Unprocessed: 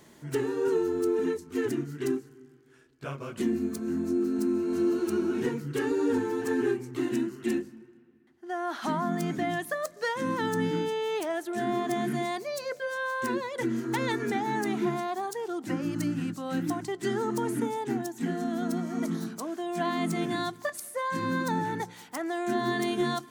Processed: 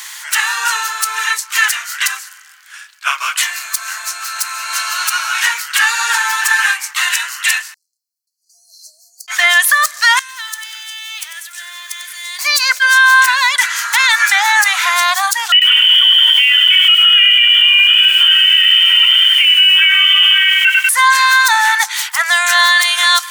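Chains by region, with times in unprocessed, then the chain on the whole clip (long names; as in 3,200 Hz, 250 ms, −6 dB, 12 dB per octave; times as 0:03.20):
0:07.74–0:09.28: linear-phase brick-wall band-stop 680–4,100 Hz + guitar amp tone stack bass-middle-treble 10-0-1
0:10.19–0:12.39: guitar amp tone stack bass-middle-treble 6-0-2 + feedback echo at a low word length 96 ms, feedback 55%, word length 11 bits, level −9 dB
0:15.52–0:20.89: comb filter 2.2 ms, depth 52% + voice inversion scrambler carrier 3,300 Hz + feedback echo at a low word length 96 ms, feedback 55%, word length 9 bits, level −6.5 dB
whole clip: Bessel high-pass filter 1,800 Hz, order 8; boost into a limiter +33 dB; level that may rise only so fast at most 480 dB per second; level −1 dB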